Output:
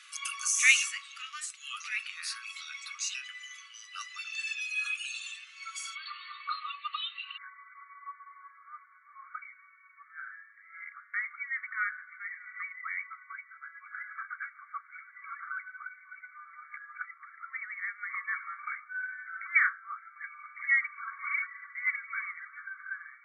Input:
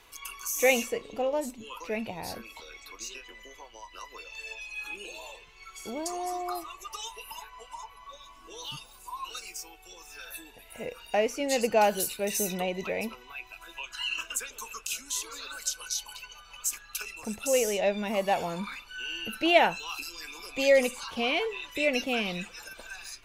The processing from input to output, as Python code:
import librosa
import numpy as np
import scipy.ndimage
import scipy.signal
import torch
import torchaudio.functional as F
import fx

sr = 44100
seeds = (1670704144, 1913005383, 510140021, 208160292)

y = fx.brickwall_bandpass(x, sr, low_hz=1100.0, high_hz=fx.steps((0.0, 11000.0), (5.94, 4500.0), (7.36, 2300.0)))
y = y * librosa.db_to_amplitude(5.5)